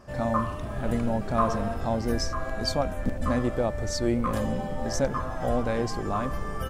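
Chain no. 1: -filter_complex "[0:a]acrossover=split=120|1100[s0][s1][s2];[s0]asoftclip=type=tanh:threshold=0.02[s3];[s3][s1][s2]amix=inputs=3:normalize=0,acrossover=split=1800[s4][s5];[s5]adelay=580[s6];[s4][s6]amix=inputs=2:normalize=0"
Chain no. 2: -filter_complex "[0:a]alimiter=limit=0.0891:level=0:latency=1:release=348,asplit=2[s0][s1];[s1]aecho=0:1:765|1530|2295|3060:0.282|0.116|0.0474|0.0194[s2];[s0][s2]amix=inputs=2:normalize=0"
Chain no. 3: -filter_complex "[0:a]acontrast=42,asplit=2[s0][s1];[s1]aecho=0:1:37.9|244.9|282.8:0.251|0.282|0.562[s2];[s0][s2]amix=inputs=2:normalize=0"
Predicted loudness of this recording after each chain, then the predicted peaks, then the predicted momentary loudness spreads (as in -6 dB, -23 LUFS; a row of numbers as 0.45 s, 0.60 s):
-29.0 LUFS, -32.5 LUFS, -21.5 LUFS; -10.5 dBFS, -18.5 dBFS, -6.0 dBFS; 5 LU, 2 LU, 3 LU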